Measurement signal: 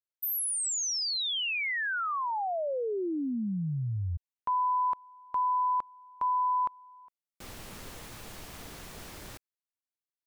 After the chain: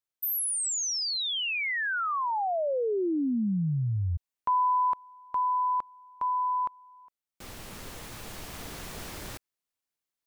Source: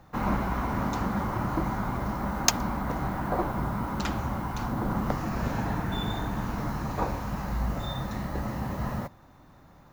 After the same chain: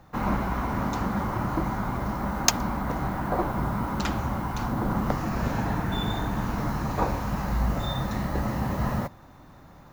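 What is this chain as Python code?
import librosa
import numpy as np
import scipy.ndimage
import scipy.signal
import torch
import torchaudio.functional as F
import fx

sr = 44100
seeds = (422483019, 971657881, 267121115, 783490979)

y = fx.rider(x, sr, range_db=3, speed_s=2.0)
y = y * librosa.db_to_amplitude(2.0)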